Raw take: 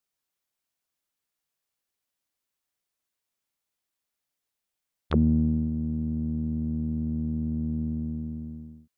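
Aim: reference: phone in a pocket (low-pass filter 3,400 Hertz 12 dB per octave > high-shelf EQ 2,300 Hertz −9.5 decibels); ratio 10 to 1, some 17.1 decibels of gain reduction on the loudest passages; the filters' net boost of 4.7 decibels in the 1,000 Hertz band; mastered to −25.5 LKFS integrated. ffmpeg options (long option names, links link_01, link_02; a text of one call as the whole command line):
ffmpeg -i in.wav -af "equalizer=frequency=1000:width_type=o:gain=8.5,acompressor=threshold=-35dB:ratio=10,lowpass=3400,highshelf=frequency=2300:gain=-9.5,volume=14.5dB" out.wav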